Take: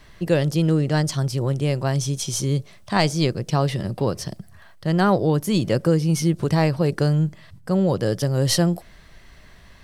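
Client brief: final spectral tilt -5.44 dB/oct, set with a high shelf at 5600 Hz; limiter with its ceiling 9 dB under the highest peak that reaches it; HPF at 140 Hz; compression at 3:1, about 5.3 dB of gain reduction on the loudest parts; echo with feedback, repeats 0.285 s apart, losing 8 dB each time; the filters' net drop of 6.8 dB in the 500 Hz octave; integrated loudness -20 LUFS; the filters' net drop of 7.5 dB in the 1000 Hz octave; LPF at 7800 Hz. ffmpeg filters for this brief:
-af "highpass=140,lowpass=7.8k,equalizer=f=500:t=o:g=-6.5,equalizer=f=1k:t=o:g=-7.5,highshelf=f=5.6k:g=-5.5,acompressor=threshold=-25dB:ratio=3,alimiter=limit=-23.5dB:level=0:latency=1,aecho=1:1:285|570|855|1140|1425:0.398|0.159|0.0637|0.0255|0.0102,volume=12.5dB"

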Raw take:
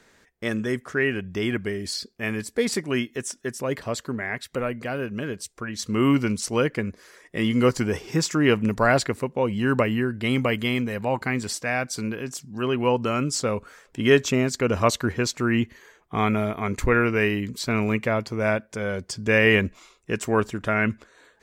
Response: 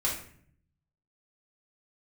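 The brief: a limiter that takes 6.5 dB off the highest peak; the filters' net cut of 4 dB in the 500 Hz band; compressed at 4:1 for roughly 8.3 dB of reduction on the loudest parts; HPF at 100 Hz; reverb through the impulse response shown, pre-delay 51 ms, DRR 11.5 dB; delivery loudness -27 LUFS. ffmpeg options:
-filter_complex "[0:a]highpass=100,equalizer=f=500:t=o:g=-5,acompressor=threshold=-24dB:ratio=4,alimiter=limit=-17.5dB:level=0:latency=1,asplit=2[a][b];[1:a]atrim=start_sample=2205,adelay=51[c];[b][c]afir=irnorm=-1:irlink=0,volume=-19dB[d];[a][d]amix=inputs=2:normalize=0,volume=3.5dB"

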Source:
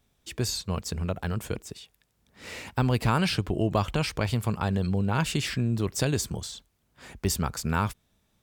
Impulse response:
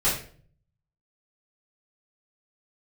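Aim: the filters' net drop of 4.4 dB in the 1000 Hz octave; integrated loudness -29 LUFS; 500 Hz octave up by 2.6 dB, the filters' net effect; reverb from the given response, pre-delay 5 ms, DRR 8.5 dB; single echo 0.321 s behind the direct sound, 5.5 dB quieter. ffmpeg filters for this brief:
-filter_complex "[0:a]equalizer=f=500:t=o:g=5,equalizer=f=1k:t=o:g=-7.5,aecho=1:1:321:0.531,asplit=2[a][b];[1:a]atrim=start_sample=2205,adelay=5[c];[b][c]afir=irnorm=-1:irlink=0,volume=-21.5dB[d];[a][d]amix=inputs=2:normalize=0,volume=-2.5dB"

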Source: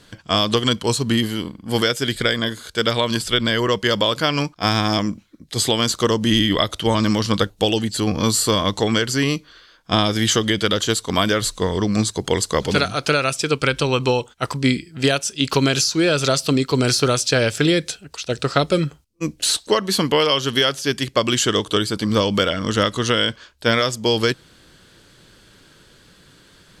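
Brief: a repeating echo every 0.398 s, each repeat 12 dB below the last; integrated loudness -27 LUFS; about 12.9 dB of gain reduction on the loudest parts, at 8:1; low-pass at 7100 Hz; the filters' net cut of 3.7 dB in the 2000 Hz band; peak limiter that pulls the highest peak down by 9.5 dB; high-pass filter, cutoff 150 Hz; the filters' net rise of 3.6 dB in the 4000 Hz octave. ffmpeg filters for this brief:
-af "highpass=150,lowpass=7.1k,equalizer=f=2k:t=o:g=-7,equalizer=f=4k:t=o:g=7.5,acompressor=threshold=-26dB:ratio=8,alimiter=limit=-18dB:level=0:latency=1,aecho=1:1:398|796|1194:0.251|0.0628|0.0157,volume=3.5dB"

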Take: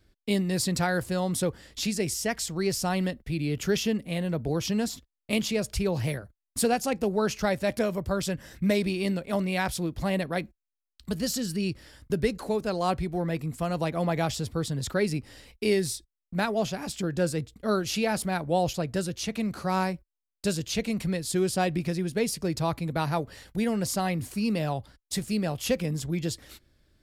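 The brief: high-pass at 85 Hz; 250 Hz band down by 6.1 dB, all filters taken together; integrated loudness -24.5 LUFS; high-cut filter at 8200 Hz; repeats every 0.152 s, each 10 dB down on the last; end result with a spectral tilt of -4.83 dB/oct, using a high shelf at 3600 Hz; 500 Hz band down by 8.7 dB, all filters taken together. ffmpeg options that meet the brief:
-af "highpass=85,lowpass=8.2k,equalizer=f=250:t=o:g=-7,equalizer=f=500:t=o:g=-9,highshelf=f=3.6k:g=-6,aecho=1:1:152|304|456|608:0.316|0.101|0.0324|0.0104,volume=9.5dB"

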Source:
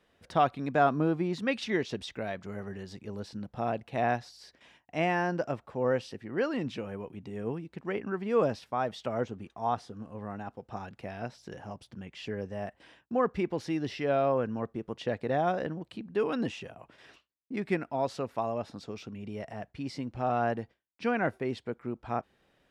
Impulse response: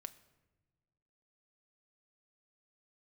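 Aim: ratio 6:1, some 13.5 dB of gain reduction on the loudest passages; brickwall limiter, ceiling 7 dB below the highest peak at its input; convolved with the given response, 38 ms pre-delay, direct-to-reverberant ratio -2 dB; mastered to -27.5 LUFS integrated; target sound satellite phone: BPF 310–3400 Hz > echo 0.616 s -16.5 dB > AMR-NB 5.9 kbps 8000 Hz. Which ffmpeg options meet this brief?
-filter_complex "[0:a]acompressor=threshold=-35dB:ratio=6,alimiter=level_in=6.5dB:limit=-24dB:level=0:latency=1,volume=-6.5dB,asplit=2[a][b];[1:a]atrim=start_sample=2205,adelay=38[c];[b][c]afir=irnorm=-1:irlink=0,volume=7dB[d];[a][d]amix=inputs=2:normalize=0,highpass=310,lowpass=3.4k,aecho=1:1:616:0.15,volume=14.5dB" -ar 8000 -c:a libopencore_amrnb -b:a 5900

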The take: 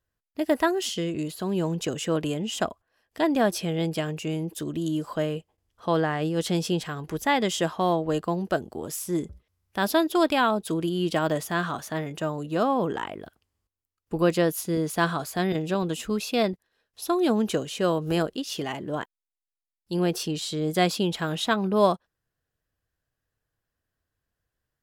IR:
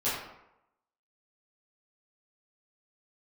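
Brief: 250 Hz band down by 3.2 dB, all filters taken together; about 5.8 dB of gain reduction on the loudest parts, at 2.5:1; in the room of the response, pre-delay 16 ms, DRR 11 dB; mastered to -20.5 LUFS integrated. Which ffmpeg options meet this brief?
-filter_complex "[0:a]equalizer=f=250:t=o:g=-5,acompressor=threshold=-26dB:ratio=2.5,asplit=2[a][b];[1:a]atrim=start_sample=2205,adelay=16[c];[b][c]afir=irnorm=-1:irlink=0,volume=-20dB[d];[a][d]amix=inputs=2:normalize=0,volume=10dB"

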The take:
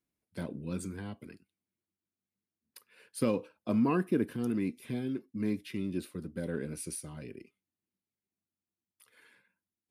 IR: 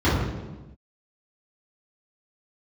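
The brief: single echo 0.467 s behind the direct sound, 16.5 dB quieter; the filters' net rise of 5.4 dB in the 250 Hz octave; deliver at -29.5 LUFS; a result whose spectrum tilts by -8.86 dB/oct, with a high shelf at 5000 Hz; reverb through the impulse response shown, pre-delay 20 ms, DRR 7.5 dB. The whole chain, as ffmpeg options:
-filter_complex "[0:a]equalizer=f=250:t=o:g=6.5,highshelf=f=5k:g=-3.5,aecho=1:1:467:0.15,asplit=2[a][b];[1:a]atrim=start_sample=2205,adelay=20[c];[b][c]afir=irnorm=-1:irlink=0,volume=-26.5dB[d];[a][d]amix=inputs=2:normalize=0,volume=-3.5dB"

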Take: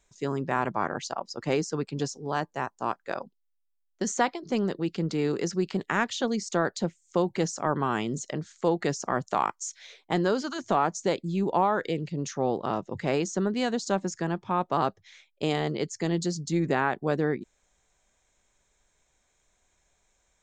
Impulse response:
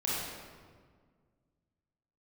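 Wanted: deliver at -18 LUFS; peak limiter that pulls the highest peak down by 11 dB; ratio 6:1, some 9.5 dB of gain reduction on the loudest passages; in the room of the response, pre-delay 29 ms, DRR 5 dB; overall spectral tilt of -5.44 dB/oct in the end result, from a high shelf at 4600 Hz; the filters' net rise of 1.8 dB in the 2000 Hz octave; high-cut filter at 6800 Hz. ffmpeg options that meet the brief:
-filter_complex "[0:a]lowpass=6.8k,equalizer=f=2k:t=o:g=3.5,highshelf=f=4.6k:g=-7,acompressor=threshold=-29dB:ratio=6,alimiter=level_in=1dB:limit=-24dB:level=0:latency=1,volume=-1dB,asplit=2[a][b];[1:a]atrim=start_sample=2205,adelay=29[c];[b][c]afir=irnorm=-1:irlink=0,volume=-12dB[d];[a][d]amix=inputs=2:normalize=0,volume=18dB"

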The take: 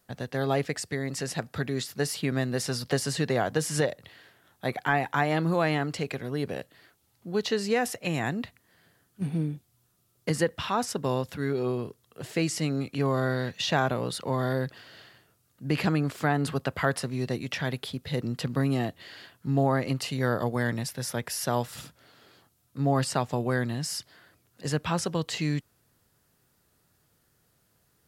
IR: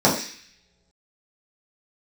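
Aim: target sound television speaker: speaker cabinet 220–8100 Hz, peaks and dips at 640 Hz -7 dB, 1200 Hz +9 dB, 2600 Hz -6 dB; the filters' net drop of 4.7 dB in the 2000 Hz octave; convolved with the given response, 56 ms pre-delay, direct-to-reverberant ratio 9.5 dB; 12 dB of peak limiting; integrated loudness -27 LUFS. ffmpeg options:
-filter_complex "[0:a]equalizer=f=2k:t=o:g=-7,alimiter=limit=-23dB:level=0:latency=1,asplit=2[a][b];[1:a]atrim=start_sample=2205,adelay=56[c];[b][c]afir=irnorm=-1:irlink=0,volume=-30dB[d];[a][d]amix=inputs=2:normalize=0,highpass=f=220:w=0.5412,highpass=f=220:w=1.3066,equalizer=f=640:t=q:w=4:g=-7,equalizer=f=1.2k:t=q:w=4:g=9,equalizer=f=2.6k:t=q:w=4:g=-6,lowpass=f=8.1k:w=0.5412,lowpass=f=8.1k:w=1.3066,volume=8dB"

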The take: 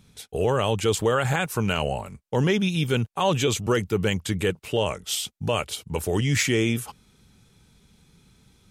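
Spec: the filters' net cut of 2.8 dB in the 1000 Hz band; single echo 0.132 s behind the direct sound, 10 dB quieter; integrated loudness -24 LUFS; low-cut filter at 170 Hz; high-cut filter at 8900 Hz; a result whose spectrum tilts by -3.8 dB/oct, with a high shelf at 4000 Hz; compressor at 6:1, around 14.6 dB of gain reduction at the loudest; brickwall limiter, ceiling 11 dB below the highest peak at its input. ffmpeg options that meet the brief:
-af "highpass=170,lowpass=8.9k,equalizer=f=1k:t=o:g=-4,highshelf=f=4k:g=4.5,acompressor=threshold=-35dB:ratio=6,alimiter=level_in=8.5dB:limit=-24dB:level=0:latency=1,volume=-8.5dB,aecho=1:1:132:0.316,volume=18.5dB"

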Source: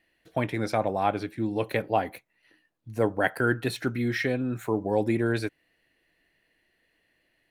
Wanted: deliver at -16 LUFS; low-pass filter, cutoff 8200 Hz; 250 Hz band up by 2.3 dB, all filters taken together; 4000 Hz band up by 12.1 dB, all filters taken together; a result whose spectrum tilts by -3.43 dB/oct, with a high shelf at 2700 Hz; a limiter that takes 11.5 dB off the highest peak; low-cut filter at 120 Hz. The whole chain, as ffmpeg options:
-af "highpass=120,lowpass=8.2k,equalizer=f=250:t=o:g=3,highshelf=f=2.7k:g=7,equalizer=f=4k:t=o:g=9,volume=13dB,alimiter=limit=-4.5dB:level=0:latency=1"

